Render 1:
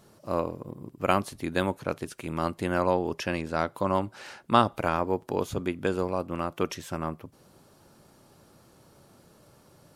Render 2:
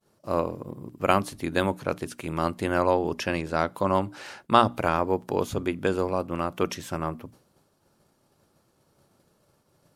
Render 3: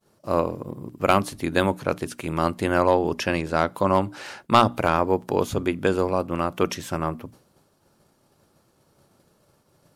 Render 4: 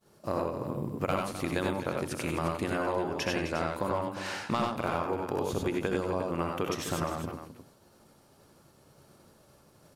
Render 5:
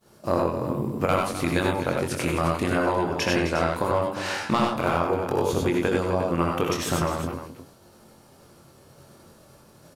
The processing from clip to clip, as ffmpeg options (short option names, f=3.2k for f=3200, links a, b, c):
-af "agate=range=-33dB:threshold=-48dB:ratio=3:detection=peak,bandreject=f=60:t=h:w=6,bandreject=f=120:t=h:w=6,bandreject=f=180:t=h:w=6,bandreject=f=240:t=h:w=6,bandreject=f=300:t=h:w=6,volume=2.5dB"
-af "asoftclip=type=hard:threshold=-9.5dB,volume=3.5dB"
-filter_complex "[0:a]acompressor=threshold=-29dB:ratio=6,asplit=2[a][b];[b]aecho=0:1:66|83|97|185|258|354:0.316|0.447|0.668|0.1|0.266|0.266[c];[a][c]amix=inputs=2:normalize=0"
-filter_complex "[0:a]asplit=2[a][b];[b]adelay=23,volume=-5dB[c];[a][c]amix=inputs=2:normalize=0,volume=6dB"